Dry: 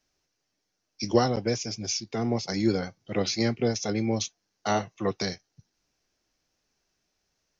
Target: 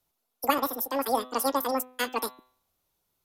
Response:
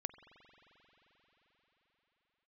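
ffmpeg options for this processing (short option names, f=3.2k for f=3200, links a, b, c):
-af "equalizer=f=730:w=4.5:g=-9,asetrate=103194,aresample=44100,bandreject=f=126.7:t=h:w=4,bandreject=f=253.4:t=h:w=4,bandreject=f=380.1:t=h:w=4,bandreject=f=506.8:t=h:w=4,bandreject=f=633.5:t=h:w=4,bandreject=f=760.2:t=h:w=4,bandreject=f=886.9:t=h:w=4,bandreject=f=1.0136k:t=h:w=4,bandreject=f=1.1403k:t=h:w=4,bandreject=f=1.267k:t=h:w=4,bandreject=f=1.3937k:t=h:w=4,bandreject=f=1.5204k:t=h:w=4,bandreject=f=1.6471k:t=h:w=4,bandreject=f=1.7738k:t=h:w=4,bandreject=f=1.9005k:t=h:w=4,bandreject=f=2.0272k:t=h:w=4,bandreject=f=2.1539k:t=h:w=4,bandreject=f=2.2806k:t=h:w=4,bandreject=f=2.4073k:t=h:w=4,bandreject=f=2.534k:t=h:w=4,bandreject=f=2.6607k:t=h:w=4,bandreject=f=2.7874k:t=h:w=4,bandreject=f=2.9141k:t=h:w=4,bandreject=f=3.0408k:t=h:w=4,bandreject=f=3.1675k:t=h:w=4,bandreject=f=3.2942k:t=h:w=4,bandreject=f=3.4209k:t=h:w=4,bandreject=f=3.5476k:t=h:w=4,bandreject=f=3.6743k:t=h:w=4,bandreject=f=3.801k:t=h:w=4,bandreject=f=3.9277k:t=h:w=4,bandreject=f=4.0544k:t=h:w=4"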